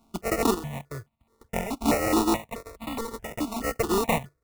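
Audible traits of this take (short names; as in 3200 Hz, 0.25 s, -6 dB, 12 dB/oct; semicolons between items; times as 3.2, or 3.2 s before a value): a buzz of ramps at a fixed pitch in blocks of 32 samples; chopped level 0.55 Hz, depth 65%, duty 30%; aliases and images of a low sample rate 1600 Hz, jitter 0%; notches that jump at a steady rate 4.7 Hz 490–1600 Hz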